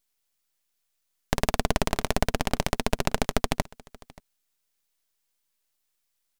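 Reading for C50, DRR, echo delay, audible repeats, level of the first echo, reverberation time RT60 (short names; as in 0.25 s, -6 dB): none, none, 0.58 s, 1, -23.5 dB, none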